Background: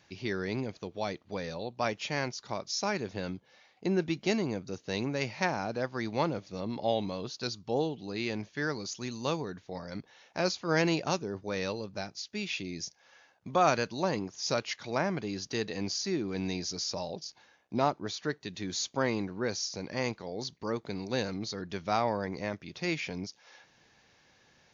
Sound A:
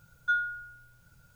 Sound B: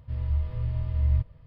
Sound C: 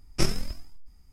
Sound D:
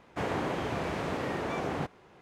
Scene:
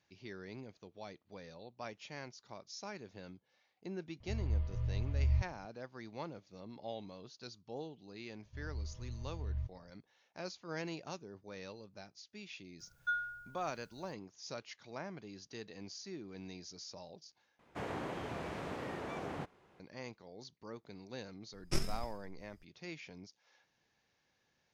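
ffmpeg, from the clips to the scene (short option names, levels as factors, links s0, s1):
-filter_complex "[2:a]asplit=2[s0][s1];[0:a]volume=0.188,asplit=2[s2][s3];[s2]atrim=end=17.594[s4];[4:a]atrim=end=2.21,asetpts=PTS-STARTPTS,volume=0.355[s5];[s3]atrim=start=19.796[s6];[s0]atrim=end=1.46,asetpts=PTS-STARTPTS,volume=0.422,afade=t=in:d=0.004:c=hsin,afade=t=out:st=1.456:d=0.004:c=hsin,adelay=4200[s7];[s1]atrim=end=1.46,asetpts=PTS-STARTPTS,volume=0.168,afade=t=in:d=0.004:c=hsin,afade=t=out:st=1.456:d=0.004:c=hsin,adelay=8450[s8];[1:a]atrim=end=1.35,asetpts=PTS-STARTPTS,volume=0.398,afade=t=in:d=0.02,afade=t=out:st=1.33:d=0.02,adelay=12790[s9];[3:a]atrim=end=1.12,asetpts=PTS-STARTPTS,volume=0.316,afade=t=in:d=0.004:c=hsin,afade=t=out:st=1.116:d=0.004:c=hsin,adelay=21530[s10];[s4][s5]acrossfade=d=0.004:c1=hsin:c2=hsin[s11];[s11][s6]acrossfade=d=0.004:c1=hsin:c2=hsin[s12];[s12][s7][s8][s9][s10]amix=inputs=5:normalize=0"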